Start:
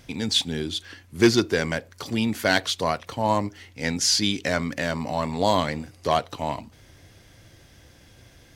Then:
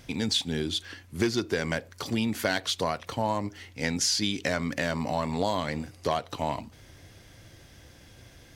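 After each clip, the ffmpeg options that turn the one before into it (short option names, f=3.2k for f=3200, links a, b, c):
-af "acompressor=threshold=-23dB:ratio=6"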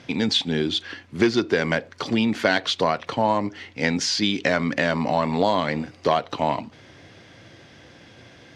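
-af "highpass=150,lowpass=4.1k,volume=7.5dB"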